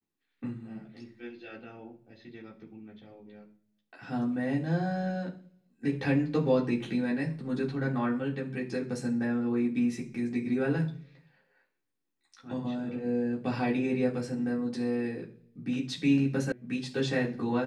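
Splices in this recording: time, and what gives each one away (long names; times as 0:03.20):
0:16.52: cut off before it has died away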